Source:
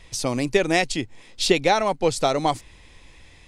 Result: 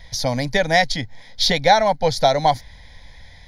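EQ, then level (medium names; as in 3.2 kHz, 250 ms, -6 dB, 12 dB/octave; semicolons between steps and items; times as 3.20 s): static phaser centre 1.8 kHz, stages 8; +7.0 dB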